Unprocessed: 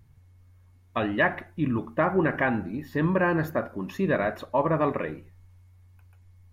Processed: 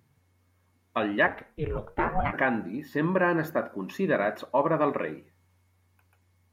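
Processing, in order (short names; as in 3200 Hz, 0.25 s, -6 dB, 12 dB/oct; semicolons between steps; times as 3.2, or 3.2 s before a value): HPF 190 Hz 12 dB/oct; 1.26–2.32 ring modulator 85 Hz -> 460 Hz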